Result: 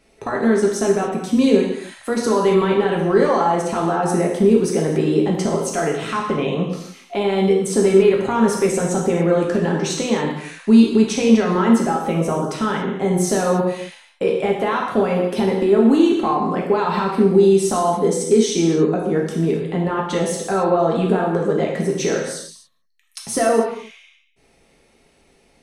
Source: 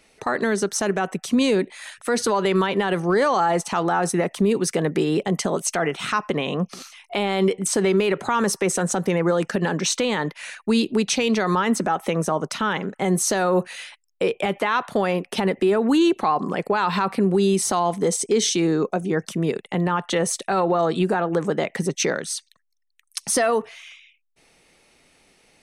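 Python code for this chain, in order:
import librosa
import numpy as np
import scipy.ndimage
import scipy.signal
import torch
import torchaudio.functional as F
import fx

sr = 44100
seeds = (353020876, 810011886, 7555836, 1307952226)

y = fx.tilt_shelf(x, sr, db=4.5, hz=740.0)
y = fx.rev_gated(y, sr, seeds[0], gate_ms=310, shape='falling', drr_db=-2.0)
y = F.gain(torch.from_numpy(y), -2.0).numpy()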